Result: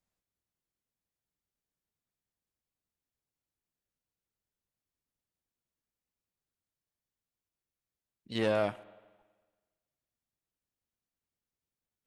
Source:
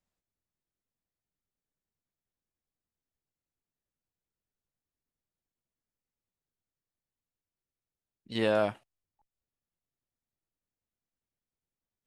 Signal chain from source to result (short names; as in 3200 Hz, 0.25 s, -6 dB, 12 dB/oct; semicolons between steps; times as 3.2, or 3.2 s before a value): tube stage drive 20 dB, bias 0.3; spring tank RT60 1.4 s, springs 46/55 ms, chirp 50 ms, DRR 17.5 dB